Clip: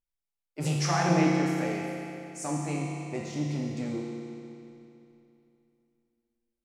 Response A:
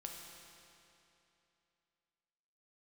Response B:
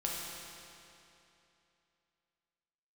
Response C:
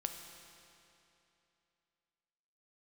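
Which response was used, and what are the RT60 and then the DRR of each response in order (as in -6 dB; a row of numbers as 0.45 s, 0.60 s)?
B; 2.9 s, 2.9 s, 2.9 s; 0.5 dB, -4.0 dB, 4.5 dB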